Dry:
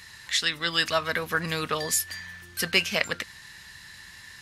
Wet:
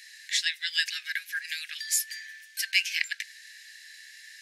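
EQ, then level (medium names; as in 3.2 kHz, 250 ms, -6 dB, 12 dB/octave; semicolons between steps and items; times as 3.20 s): rippled Chebyshev high-pass 1.6 kHz, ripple 3 dB; 0.0 dB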